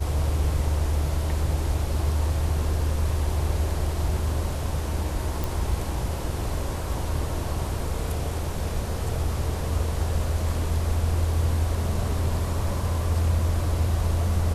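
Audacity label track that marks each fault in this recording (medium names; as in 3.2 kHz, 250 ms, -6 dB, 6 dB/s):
5.440000	5.440000	pop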